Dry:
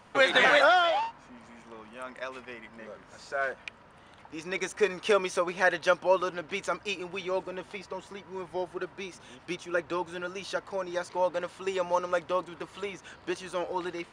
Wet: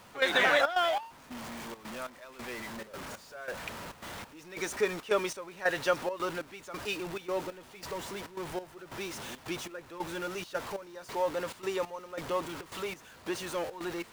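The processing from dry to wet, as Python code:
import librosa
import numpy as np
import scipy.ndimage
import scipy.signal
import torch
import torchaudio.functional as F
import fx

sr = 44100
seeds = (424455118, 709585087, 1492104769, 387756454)

y = x + 0.5 * 10.0 ** (-33.5 / 20.0) * np.sign(x)
y = fx.step_gate(y, sr, bpm=138, pattern='..xxxx.xx.', floor_db=-12.0, edge_ms=4.5)
y = y * librosa.db_to_amplitude(-4.0)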